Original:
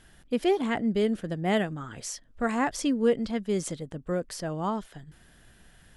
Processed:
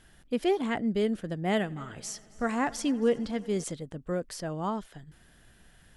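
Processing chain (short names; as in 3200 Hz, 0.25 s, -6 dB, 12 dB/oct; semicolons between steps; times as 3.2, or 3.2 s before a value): 1.49–3.64 multi-head echo 90 ms, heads first and third, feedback 63%, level -23.5 dB; gain -2 dB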